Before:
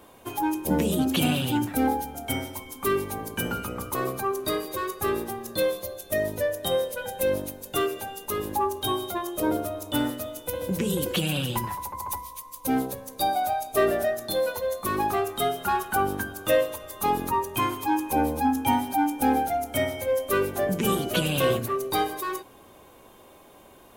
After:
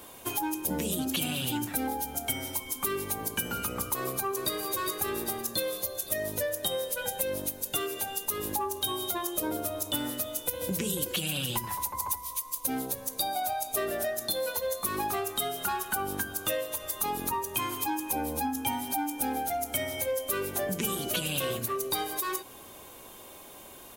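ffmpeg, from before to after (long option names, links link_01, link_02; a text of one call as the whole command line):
ffmpeg -i in.wav -filter_complex "[0:a]asplit=2[link_01][link_02];[link_02]afade=type=in:start_time=3.96:duration=0.01,afade=type=out:start_time=4.61:duration=0.01,aecho=0:1:400|800|1200|1600|2000|2400:0.316228|0.173925|0.0956589|0.0526124|0.0289368|0.0159152[link_03];[link_01][link_03]amix=inputs=2:normalize=0,highshelf=frequency=2800:gain=11,acompressor=threshold=-28dB:ratio=6" out.wav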